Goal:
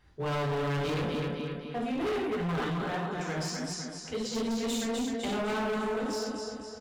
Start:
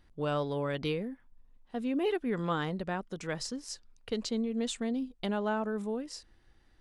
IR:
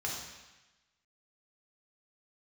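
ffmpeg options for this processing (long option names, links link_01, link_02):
-filter_complex "[0:a]aecho=1:1:254|508|762|1016|1270|1524|1778:0.531|0.276|0.144|0.0746|0.0388|0.0202|0.0105[link_01];[1:a]atrim=start_sample=2205,atrim=end_sample=6174[link_02];[link_01][link_02]afir=irnorm=-1:irlink=0,asplit=3[link_03][link_04][link_05];[link_03]afade=type=out:start_time=2.26:duration=0.02[link_06];[link_04]flanger=delay=4.6:depth=9.4:regen=38:speed=1.6:shape=triangular,afade=type=in:start_time=2.26:duration=0.02,afade=type=out:start_time=4.34:duration=0.02[link_07];[link_05]afade=type=in:start_time=4.34:duration=0.02[link_08];[link_06][link_07][link_08]amix=inputs=3:normalize=0,volume=31dB,asoftclip=hard,volume=-31dB,volume=2.5dB"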